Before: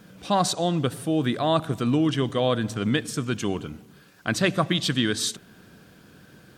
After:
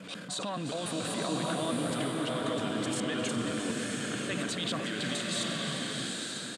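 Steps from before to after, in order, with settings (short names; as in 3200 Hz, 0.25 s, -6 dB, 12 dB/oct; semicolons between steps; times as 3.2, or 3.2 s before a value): slices in reverse order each 0.143 s, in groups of 2; dynamic EQ 5000 Hz, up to -5 dB, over -48 dBFS, Q 5; in parallel at -1 dB: negative-ratio compressor -32 dBFS; on the sum: transient shaper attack -10 dB, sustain +6 dB; limiter -20.5 dBFS, peak gain reduction 11 dB; speaker cabinet 230–9300 Hz, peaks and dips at 370 Hz -8 dB, 820 Hz -9 dB, 5800 Hz -9 dB; on a send: frequency-shifting echo 0.354 s, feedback 33%, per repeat +98 Hz, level -11.5 dB; on the sum: bloom reverb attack 0.96 s, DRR -1 dB; gain -3 dB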